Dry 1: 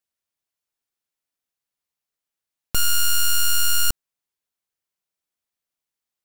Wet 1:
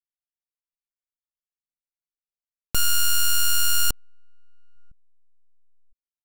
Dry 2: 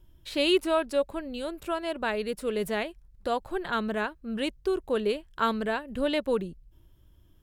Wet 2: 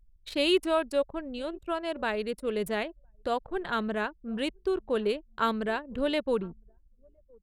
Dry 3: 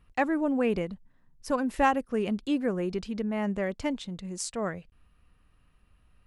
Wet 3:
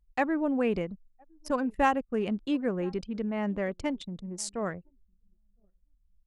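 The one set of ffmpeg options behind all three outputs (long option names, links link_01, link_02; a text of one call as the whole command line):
ffmpeg -i in.wav -filter_complex "[0:a]asplit=2[link_01][link_02];[link_02]adelay=1009,lowpass=frequency=2600:poles=1,volume=-24dB,asplit=2[link_03][link_04];[link_04]adelay=1009,lowpass=frequency=2600:poles=1,volume=0.29[link_05];[link_01][link_03][link_05]amix=inputs=3:normalize=0,anlmdn=0.398,volume=-1dB" out.wav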